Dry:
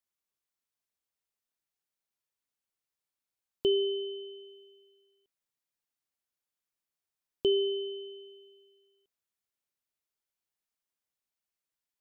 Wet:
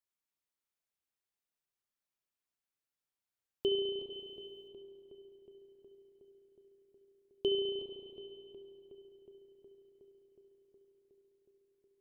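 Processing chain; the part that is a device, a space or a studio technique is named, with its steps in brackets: 4.1–4.68 tilt shelf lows -7.5 dB, about 1200 Hz; dub delay into a spring reverb (darkening echo 0.366 s, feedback 78%, low-pass 2800 Hz, level -14.5 dB; spring tank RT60 3 s, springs 34 ms, chirp 40 ms, DRR 2.5 dB); gain -4.5 dB

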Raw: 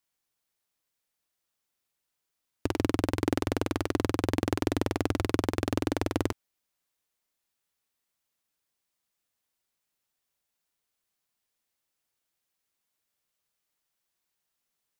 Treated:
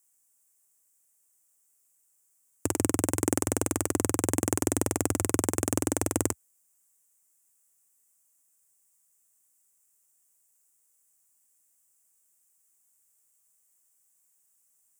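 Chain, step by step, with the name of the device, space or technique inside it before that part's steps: budget condenser microphone (HPF 76 Hz 24 dB/oct; resonant high shelf 5700 Hz +12.5 dB, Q 3)

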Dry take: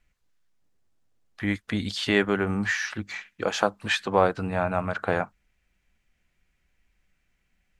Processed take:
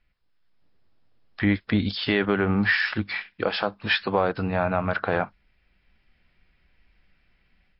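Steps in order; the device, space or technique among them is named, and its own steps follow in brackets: 1.45–2.09 bell 3200 Hz -4 dB 2.9 oct; low-bitrate web radio (AGC gain up to 8 dB; limiter -9 dBFS, peak gain reduction 7.5 dB; MP3 32 kbps 12000 Hz)

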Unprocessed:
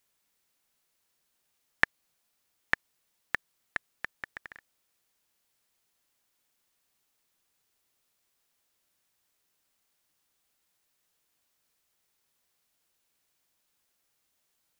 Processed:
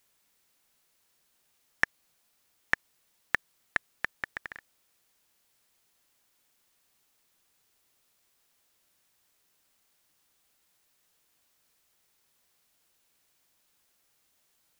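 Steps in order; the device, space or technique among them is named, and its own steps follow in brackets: soft clipper into limiter (soft clip -5 dBFS, distortion -19 dB; limiter -11.5 dBFS, peak gain reduction 5 dB); gain +5 dB

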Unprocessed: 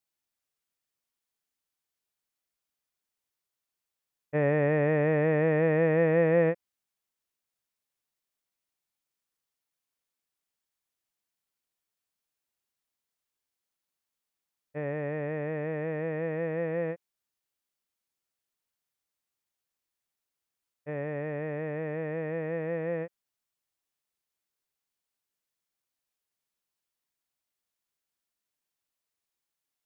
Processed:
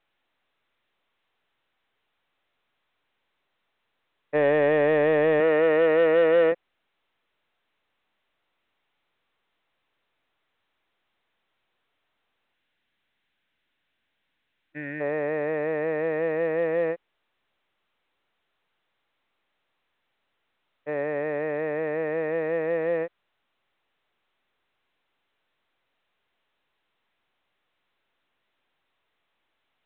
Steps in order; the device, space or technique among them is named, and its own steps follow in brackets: 5.4–6.52 HPF 180 Hz 12 dB/oct; 12.53–15.01 spectral gain 340–1400 Hz -17 dB; telephone (BPF 320–3100 Hz; soft clip -21.5 dBFS, distortion -17 dB; gain +8 dB; µ-law 64 kbps 8000 Hz)

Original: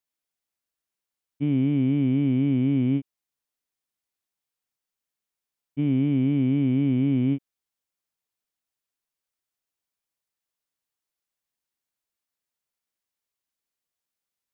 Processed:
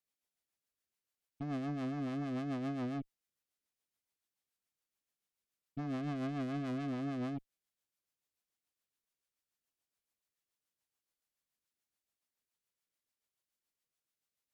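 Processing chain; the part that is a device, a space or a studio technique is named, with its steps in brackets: 6–6.88 low shelf 420 Hz +3.5 dB; overdriven rotary cabinet (tube stage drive 36 dB, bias 0.45; rotary speaker horn 7 Hz); gain +1 dB

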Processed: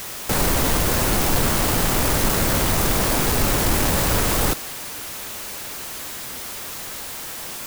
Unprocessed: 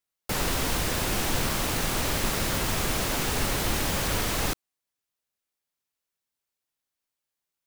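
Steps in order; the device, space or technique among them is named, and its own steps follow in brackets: early CD player with a faulty converter (zero-crossing step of -29 dBFS; clock jitter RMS 0.089 ms); gain +5.5 dB

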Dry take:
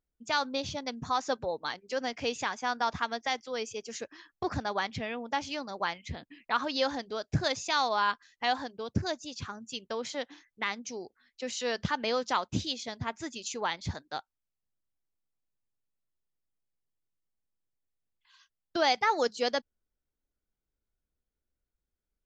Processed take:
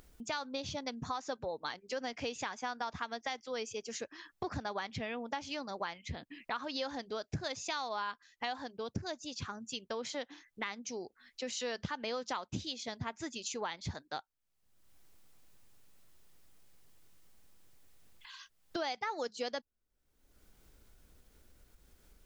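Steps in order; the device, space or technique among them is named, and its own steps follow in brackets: upward and downward compression (upward compressor, threshold -38 dBFS; compressor 5:1, threshold -33 dBFS, peak gain reduction 11 dB); gain -1.5 dB

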